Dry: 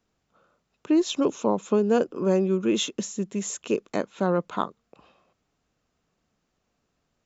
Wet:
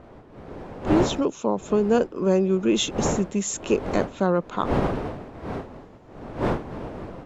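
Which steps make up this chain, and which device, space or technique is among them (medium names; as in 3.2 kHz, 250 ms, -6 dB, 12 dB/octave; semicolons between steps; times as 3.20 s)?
smartphone video outdoors (wind noise 540 Hz -32 dBFS; level rider gain up to 13 dB; trim -6.5 dB; AAC 96 kbps 32 kHz)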